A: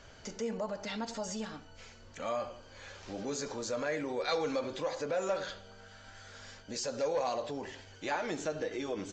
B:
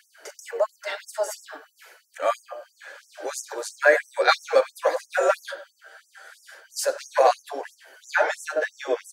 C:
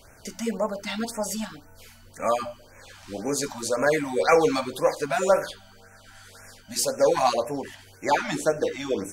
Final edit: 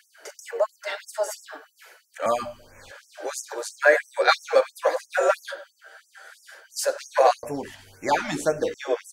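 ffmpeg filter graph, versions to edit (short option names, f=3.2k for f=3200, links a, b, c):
-filter_complex "[2:a]asplit=2[a][b];[1:a]asplit=3[c][d][e];[c]atrim=end=2.262[f];[a]atrim=start=2.258:end=2.912[g];[d]atrim=start=2.908:end=7.432[h];[b]atrim=start=7.428:end=8.742[i];[e]atrim=start=8.738[j];[f][g]acrossfade=d=0.004:c1=hsin:c2=hsin[k];[k][h]acrossfade=d=0.004:c1=hsin:c2=hsin[l];[l][i]acrossfade=d=0.004:c1=hsin:c2=hsin[m];[m][j]acrossfade=d=0.004:c1=hsin:c2=hsin"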